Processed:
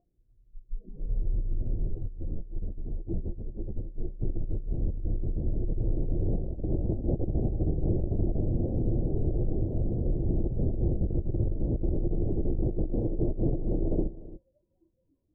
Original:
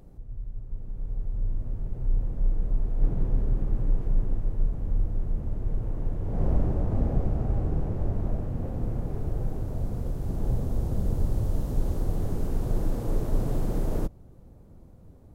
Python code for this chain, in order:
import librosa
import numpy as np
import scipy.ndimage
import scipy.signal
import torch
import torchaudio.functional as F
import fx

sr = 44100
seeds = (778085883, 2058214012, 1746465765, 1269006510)

y = fx.noise_reduce_blind(x, sr, reduce_db=29)
y = y + 10.0 ** (-20.0 / 20.0) * np.pad(y, (int(296 * sr / 1000.0), 0))[:len(y)]
y = fx.over_compress(y, sr, threshold_db=-26.0, ratio=-0.5)
y = scipy.signal.sosfilt(scipy.signal.cheby2(4, 40, 1300.0, 'lowpass', fs=sr, output='sos'), y)
y = fx.peak_eq(y, sr, hz=340.0, db=9.0, octaves=0.3)
y = fx.ensemble(y, sr, at=(1.89, 4.18), fade=0.02)